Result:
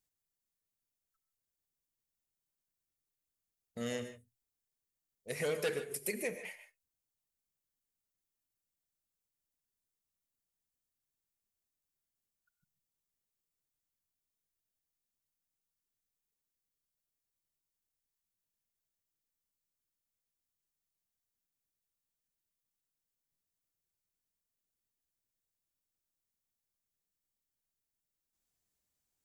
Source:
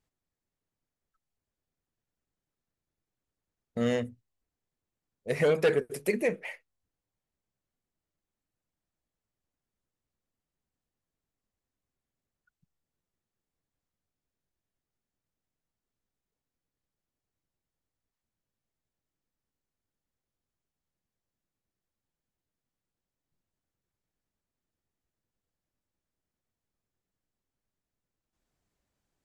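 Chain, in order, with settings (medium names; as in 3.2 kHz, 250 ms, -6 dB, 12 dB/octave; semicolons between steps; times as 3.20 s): pre-emphasis filter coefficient 0.8; gated-style reverb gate 170 ms rising, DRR 9.5 dB; trim +2.5 dB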